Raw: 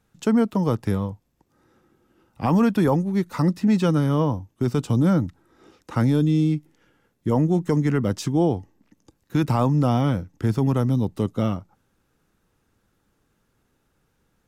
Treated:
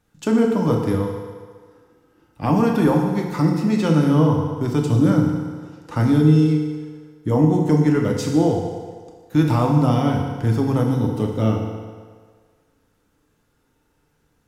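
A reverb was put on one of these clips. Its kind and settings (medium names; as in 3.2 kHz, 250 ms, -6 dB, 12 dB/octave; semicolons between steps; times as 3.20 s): FDN reverb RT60 1.7 s, low-frequency decay 0.75×, high-frequency decay 0.85×, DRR 0 dB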